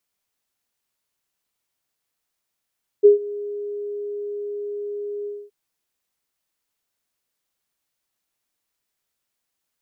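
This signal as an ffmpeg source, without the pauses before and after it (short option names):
-f lavfi -i "aevalsrc='0.531*sin(2*PI*411*t)':d=2.472:s=44100,afade=t=in:d=0.024,afade=t=out:st=0.024:d=0.127:silence=0.0891,afade=t=out:st=2.23:d=0.242"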